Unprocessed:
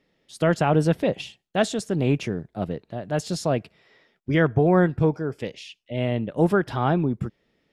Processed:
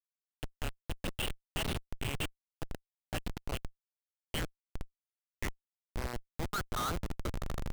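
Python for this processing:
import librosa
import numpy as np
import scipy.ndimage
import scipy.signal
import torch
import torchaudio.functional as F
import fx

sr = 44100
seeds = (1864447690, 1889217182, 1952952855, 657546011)

y = fx.fade_in_head(x, sr, length_s=1.8)
y = fx.highpass(y, sr, hz=120.0, slope=6)
y = fx.rider(y, sr, range_db=4, speed_s=0.5)
y = fx.filter_sweep_bandpass(y, sr, from_hz=3000.0, to_hz=1300.0, start_s=4.83, end_s=6.34, q=7.5)
y = fx.echo_swell(y, sr, ms=80, loudest=8, wet_db=-18)
y = fx.schmitt(y, sr, flips_db=-40.0)
y = y * librosa.db_to_amplitude(13.0)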